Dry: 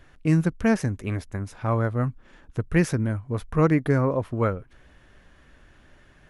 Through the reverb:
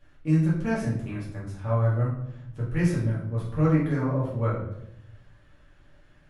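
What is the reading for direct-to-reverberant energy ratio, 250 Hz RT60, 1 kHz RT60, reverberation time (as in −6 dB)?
−7.5 dB, 1.2 s, 0.70 s, 0.80 s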